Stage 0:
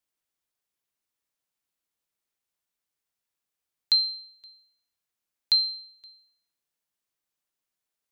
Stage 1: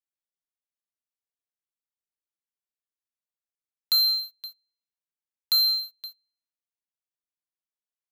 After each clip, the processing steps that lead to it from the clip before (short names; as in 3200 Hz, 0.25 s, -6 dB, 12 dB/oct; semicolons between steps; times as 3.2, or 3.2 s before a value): sample leveller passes 5; gain -5 dB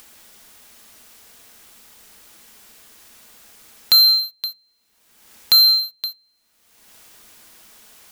on a send at -10 dB: reverb RT60 0.15 s, pre-delay 3 ms; on the sum: upward compressor, threshold -28 dBFS; gain +9 dB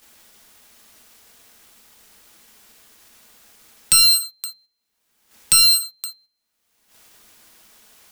self-modulated delay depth 0.44 ms; gate -49 dBFS, range -11 dB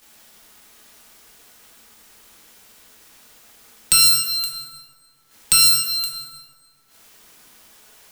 plate-style reverb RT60 2.1 s, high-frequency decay 0.6×, DRR 1.5 dB